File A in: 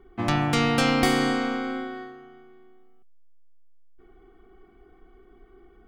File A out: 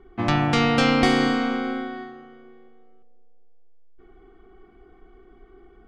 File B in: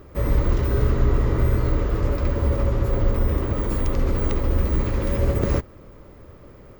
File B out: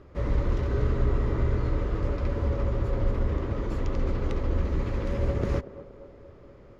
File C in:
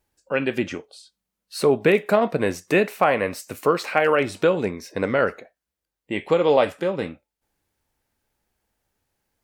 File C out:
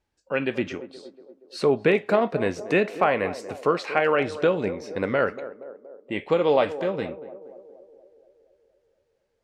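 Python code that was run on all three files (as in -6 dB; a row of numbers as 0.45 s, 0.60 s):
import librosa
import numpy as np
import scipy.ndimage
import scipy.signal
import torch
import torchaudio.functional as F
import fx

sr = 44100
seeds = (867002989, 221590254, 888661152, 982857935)

y = scipy.signal.sosfilt(scipy.signal.butter(2, 5700.0, 'lowpass', fs=sr, output='sos'), x)
y = fx.echo_banded(y, sr, ms=236, feedback_pct=63, hz=480.0, wet_db=-13.0)
y = y * 10.0 ** (-26 / 20.0) / np.sqrt(np.mean(np.square(y)))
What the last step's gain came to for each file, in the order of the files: +2.5 dB, -5.5 dB, -2.5 dB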